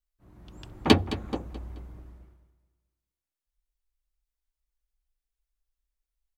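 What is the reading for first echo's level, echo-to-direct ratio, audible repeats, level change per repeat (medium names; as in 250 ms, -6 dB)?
-14.5 dB, -14.0 dB, 3, -8.5 dB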